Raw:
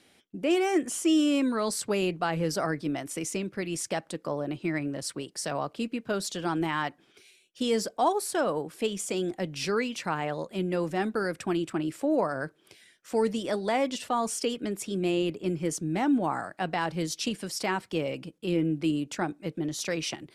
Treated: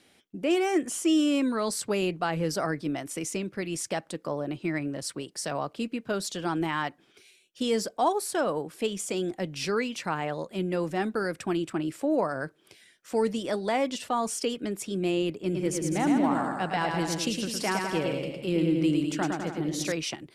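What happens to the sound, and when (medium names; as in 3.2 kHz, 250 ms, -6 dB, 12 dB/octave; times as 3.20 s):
15.40–19.92 s: bouncing-ball echo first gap 110 ms, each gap 0.85×, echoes 5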